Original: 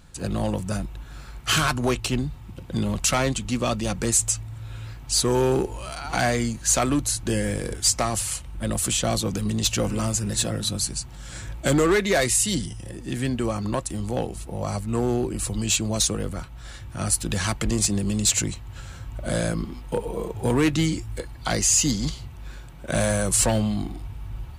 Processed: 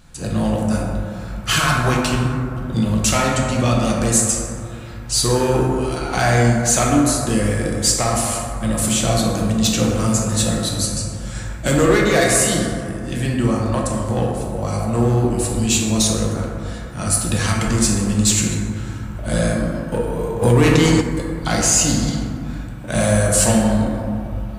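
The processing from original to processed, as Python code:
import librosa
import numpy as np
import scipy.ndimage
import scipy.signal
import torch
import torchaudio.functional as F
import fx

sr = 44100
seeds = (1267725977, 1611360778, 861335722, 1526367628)

y = fx.peak_eq(x, sr, hz=400.0, db=-4.0, octaves=0.29)
y = fx.rev_plate(y, sr, seeds[0], rt60_s=2.6, hf_ratio=0.3, predelay_ms=0, drr_db=-2.5)
y = fx.env_flatten(y, sr, amount_pct=70, at=(20.41, 21.0), fade=0.02)
y = y * 10.0 ** (2.0 / 20.0)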